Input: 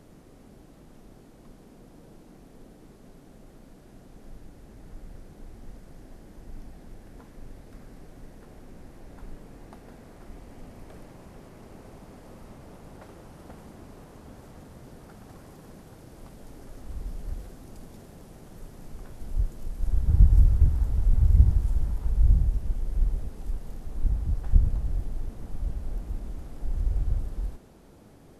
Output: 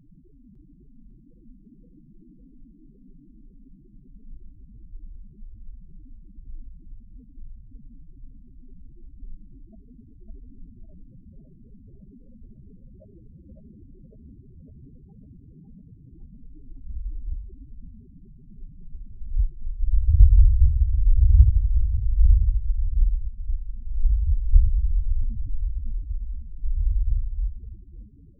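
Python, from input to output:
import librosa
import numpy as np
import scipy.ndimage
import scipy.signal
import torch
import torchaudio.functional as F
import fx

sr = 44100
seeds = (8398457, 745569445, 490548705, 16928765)

y = fx.zero_step(x, sr, step_db=-28.5, at=(23.9, 25.61))
y = scipy.signal.sosfilt(scipy.signal.butter(4, 1000.0, 'lowpass', fs=sr, output='sos'), y)
y = fx.spec_topn(y, sr, count=4)
y = fx.echo_thinned(y, sr, ms=554, feedback_pct=56, hz=150.0, wet_db=-5)
y = y * librosa.db_to_amplitude(4.0)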